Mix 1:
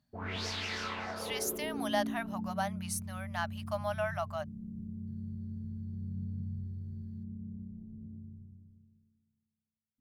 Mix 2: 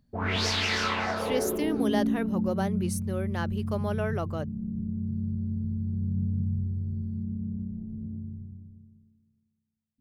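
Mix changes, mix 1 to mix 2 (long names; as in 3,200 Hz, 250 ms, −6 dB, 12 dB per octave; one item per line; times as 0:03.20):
speech: remove linear-phase brick-wall high-pass 580 Hz
background +10.0 dB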